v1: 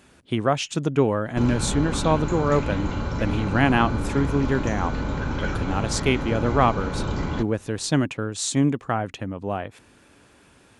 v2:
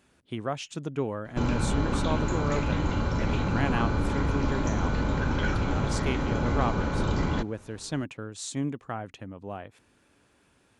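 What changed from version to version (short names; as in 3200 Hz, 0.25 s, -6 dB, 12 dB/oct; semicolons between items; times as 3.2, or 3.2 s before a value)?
speech -10.0 dB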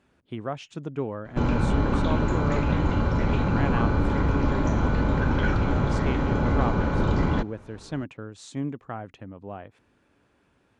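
background +4.0 dB; master: add LPF 2200 Hz 6 dB/oct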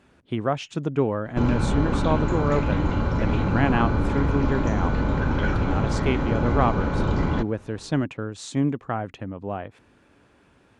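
speech +7.5 dB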